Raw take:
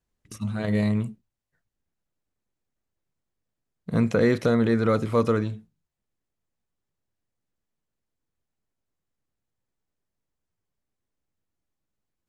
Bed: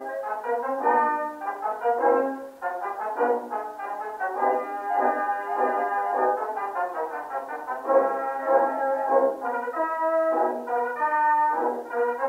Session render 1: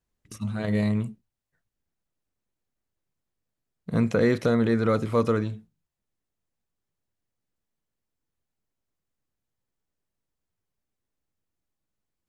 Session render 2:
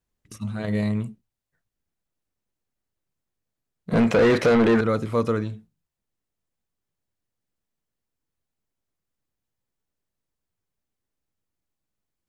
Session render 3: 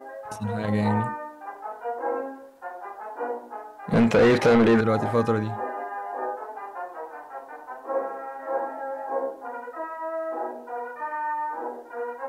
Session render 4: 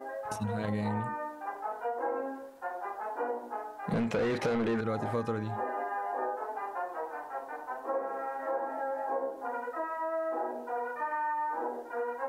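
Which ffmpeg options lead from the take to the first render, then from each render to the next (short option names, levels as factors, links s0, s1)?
-af "volume=0.891"
-filter_complex "[0:a]asettb=1/sr,asplit=3[s0][s1][s2];[s0]atrim=end=3.904[s3];[s1]atrim=start=3.9:end=4.81,asetpts=PTS-STARTPTS,afade=t=in:d=0.004:c=qsin,afade=t=out:st=0.906:d=0.004:c=qsin,asplit=2[s4][s5];[s5]highpass=f=720:p=1,volume=20,asoftclip=type=tanh:threshold=0.335[s6];[s4][s6]amix=inputs=2:normalize=0,lowpass=f=1800:p=1,volume=0.501[s7];[s2]atrim=start=4.806[s8];[s3][s7]acrossfade=d=0.004:c1=hsin:c2=qsin[s9];[s9][s8]acrossfade=d=0.004:c1=qsin:c2=hsin"
-filter_complex "[1:a]volume=0.422[s0];[0:a][s0]amix=inputs=2:normalize=0"
-af "acompressor=threshold=0.0316:ratio=4"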